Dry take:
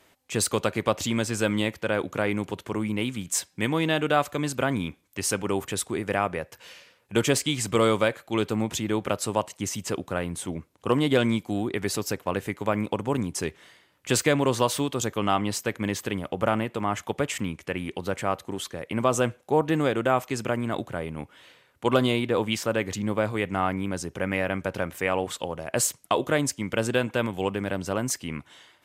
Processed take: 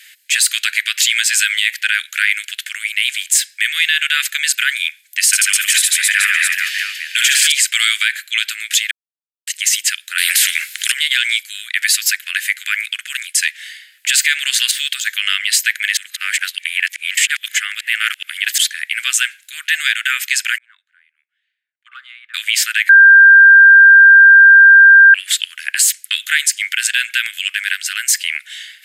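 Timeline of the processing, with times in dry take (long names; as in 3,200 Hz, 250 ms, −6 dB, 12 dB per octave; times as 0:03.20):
0:05.27–0:07.52: reverse bouncing-ball delay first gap 60 ms, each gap 1.4×, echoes 5, each echo −2 dB
0:08.91–0:09.47: silence
0:10.18–0:10.92: every bin compressed towards the loudest bin 4 to 1
0:14.71–0:15.20: de-essing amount 85%
0:15.97–0:18.58: reverse
0:20.58–0:22.34: envelope filter 290–1,200 Hz, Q 15, up, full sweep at −22.5 dBFS
0:22.89–0:25.14: beep over 1,590 Hz −10.5 dBFS
whole clip: Butterworth high-pass 1,600 Hz 72 dB per octave; parametric band 5,800 Hz −6 dB 0.2 octaves; boost into a limiter +22 dB; level −1 dB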